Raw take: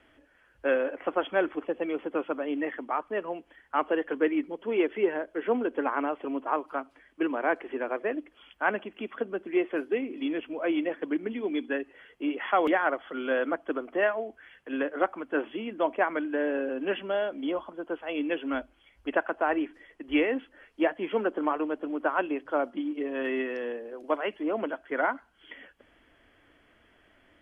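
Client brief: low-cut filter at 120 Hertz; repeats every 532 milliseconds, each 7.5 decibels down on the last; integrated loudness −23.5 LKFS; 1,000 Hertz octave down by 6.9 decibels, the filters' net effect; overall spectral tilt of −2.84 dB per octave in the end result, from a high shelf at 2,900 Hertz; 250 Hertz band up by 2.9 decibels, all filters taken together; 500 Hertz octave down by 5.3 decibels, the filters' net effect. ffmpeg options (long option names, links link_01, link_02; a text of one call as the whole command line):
ffmpeg -i in.wav -af "highpass=120,equalizer=frequency=250:width_type=o:gain=7.5,equalizer=frequency=500:width_type=o:gain=-7.5,equalizer=frequency=1000:width_type=o:gain=-8.5,highshelf=frequency=2900:gain=6.5,aecho=1:1:532|1064|1596|2128|2660:0.422|0.177|0.0744|0.0312|0.0131,volume=7dB" out.wav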